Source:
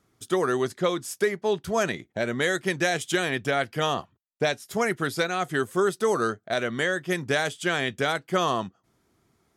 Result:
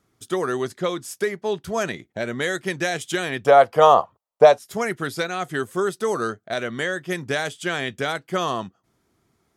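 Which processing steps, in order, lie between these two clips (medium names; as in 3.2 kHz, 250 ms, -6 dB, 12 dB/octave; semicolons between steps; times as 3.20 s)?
3.46–4.59 s: high-order bell 750 Hz +15 dB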